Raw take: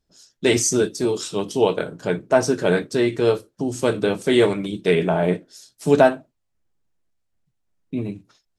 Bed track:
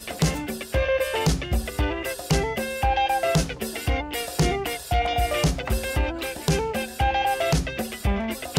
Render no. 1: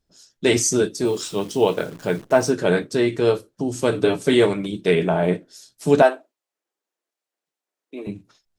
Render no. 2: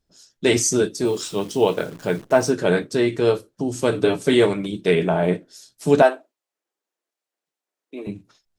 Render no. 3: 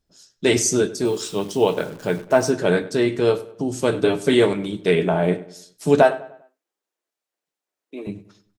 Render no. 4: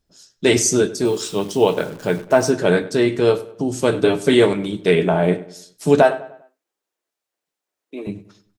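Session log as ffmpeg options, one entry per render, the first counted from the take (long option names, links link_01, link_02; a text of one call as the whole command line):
ffmpeg -i in.wav -filter_complex "[0:a]asettb=1/sr,asplit=3[link_01][link_02][link_03];[link_01]atrim=end=1.054[link_04];[link_02]atrim=start=1.05:end=2.5,asetpts=PTS-STARTPTS,afade=type=in:duration=0.004:curve=qsin,afade=type=out:start_time=1.446:duration=0.004:curve=qsin,acrusher=bits=8:dc=4:mix=0:aa=0.000001[link_05];[link_03]atrim=start=2.496[link_06];[link_04][link_05]acrossfade=duration=0.004:curve1=hsin:curve2=qsin[link_07];[link_07][link_06]acrossfade=duration=0.004:curve1=qsin:curve2=hsin,asettb=1/sr,asplit=3[link_08][link_09][link_10];[link_08]atrim=end=3.924[link_11];[link_09]atrim=start=3.92:end=4.34,asetpts=PTS-STARTPTS,afade=type=in:duration=0.004:curve=qsin,afade=type=out:start_time=0.416:duration=0.004:curve=qsin,aecho=1:1:7:0.65,atrim=end_sample=18522[link_12];[link_10]atrim=start=4.336[link_13];[link_11][link_12]acrossfade=duration=0.004:curve1=hsin:curve2=qsin[link_14];[link_14][link_13]acrossfade=duration=0.004:curve1=qsin:curve2=hsin,asettb=1/sr,asplit=3[link_15][link_16][link_17];[link_15]atrim=end=6.024[link_18];[link_16]atrim=start=6.02:end=8.07,asetpts=PTS-STARTPTS,afade=type=in:duration=0.004:curve=qsin,afade=type=out:start_time=2.046:duration=0.004:curve=qsin,highpass=frequency=350:width=0.5412,highpass=frequency=350:width=1.3066[link_19];[link_17]atrim=start=8.066[link_20];[link_18][link_19]acrossfade=duration=0.004:curve1=hsin:curve2=qsin[link_21];[link_21][link_20]acrossfade=duration=0.004:curve1=qsin:curve2=hsin" out.wav
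ffmpeg -i in.wav -af anull out.wav
ffmpeg -i in.wav -filter_complex "[0:a]asplit=2[link_01][link_02];[link_02]adelay=99,lowpass=frequency=3500:poles=1,volume=-17dB,asplit=2[link_03][link_04];[link_04]adelay=99,lowpass=frequency=3500:poles=1,volume=0.42,asplit=2[link_05][link_06];[link_06]adelay=99,lowpass=frequency=3500:poles=1,volume=0.42,asplit=2[link_07][link_08];[link_08]adelay=99,lowpass=frequency=3500:poles=1,volume=0.42[link_09];[link_01][link_03][link_05][link_07][link_09]amix=inputs=5:normalize=0" out.wav
ffmpeg -i in.wav -af "volume=2.5dB,alimiter=limit=-2dB:level=0:latency=1" out.wav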